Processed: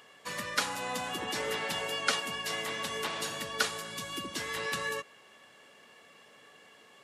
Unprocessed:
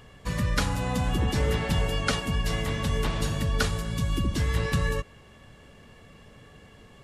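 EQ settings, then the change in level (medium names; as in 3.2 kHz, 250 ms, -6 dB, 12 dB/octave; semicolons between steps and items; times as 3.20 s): high-pass 280 Hz 12 dB/octave; bass shelf 480 Hz -10 dB; 0.0 dB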